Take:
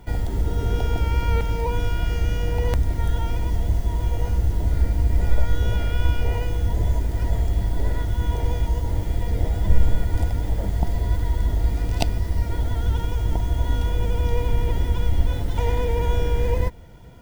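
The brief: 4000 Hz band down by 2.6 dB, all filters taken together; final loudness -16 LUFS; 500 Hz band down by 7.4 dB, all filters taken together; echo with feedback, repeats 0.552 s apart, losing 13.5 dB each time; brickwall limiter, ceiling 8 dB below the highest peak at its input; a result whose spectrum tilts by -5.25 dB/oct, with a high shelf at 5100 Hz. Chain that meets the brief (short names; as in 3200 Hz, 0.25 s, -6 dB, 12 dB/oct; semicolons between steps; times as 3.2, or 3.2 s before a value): bell 500 Hz -8.5 dB; bell 4000 Hz -7 dB; high shelf 5100 Hz +8.5 dB; limiter -12.5 dBFS; feedback echo 0.552 s, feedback 21%, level -13.5 dB; gain +9 dB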